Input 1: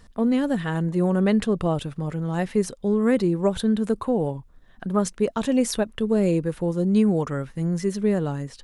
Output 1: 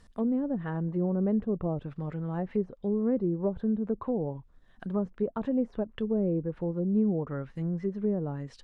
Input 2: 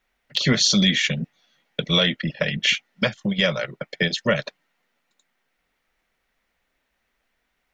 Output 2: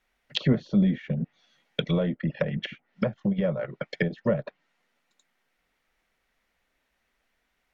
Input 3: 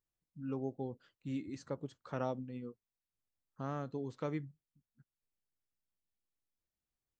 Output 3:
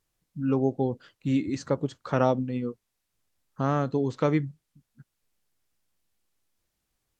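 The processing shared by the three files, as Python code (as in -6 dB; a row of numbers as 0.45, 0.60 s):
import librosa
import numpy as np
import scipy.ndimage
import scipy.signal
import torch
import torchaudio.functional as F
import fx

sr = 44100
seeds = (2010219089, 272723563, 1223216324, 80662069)

y = fx.env_lowpass_down(x, sr, base_hz=670.0, full_db=-19.0)
y = y * 10.0 ** (-30 / 20.0) / np.sqrt(np.mean(np.square(y)))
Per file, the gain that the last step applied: -6.5, -1.5, +14.0 dB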